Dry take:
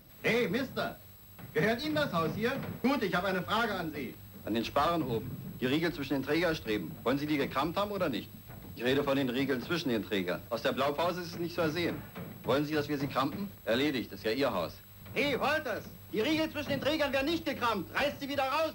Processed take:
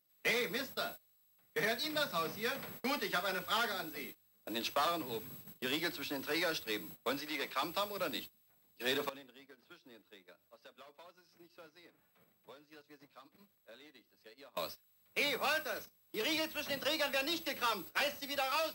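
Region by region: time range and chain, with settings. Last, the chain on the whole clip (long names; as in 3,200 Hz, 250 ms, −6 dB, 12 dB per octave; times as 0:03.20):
0:07.20–0:07.63: high-pass filter 410 Hz 6 dB per octave + high-shelf EQ 8,800 Hz −5.5 dB
0:09.09–0:14.57: downward compressor 12 to 1, threshold −39 dBFS + high-shelf EQ 3,100 Hz −5 dB
whole clip: high-shelf EQ 12,000 Hz −11.5 dB; noise gate −41 dBFS, range −20 dB; RIAA equalisation recording; level −4.5 dB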